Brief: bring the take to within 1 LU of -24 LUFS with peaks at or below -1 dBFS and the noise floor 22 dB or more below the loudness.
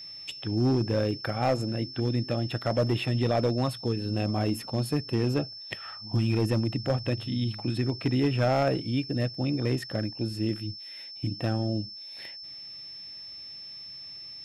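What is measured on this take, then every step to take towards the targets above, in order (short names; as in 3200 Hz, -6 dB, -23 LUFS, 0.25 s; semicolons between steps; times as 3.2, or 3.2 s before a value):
clipped 0.8%; flat tops at -18.0 dBFS; steady tone 5300 Hz; tone level -40 dBFS; loudness -29.0 LUFS; peak -18.0 dBFS; loudness target -24.0 LUFS
-> clip repair -18 dBFS; notch 5300 Hz, Q 30; gain +5 dB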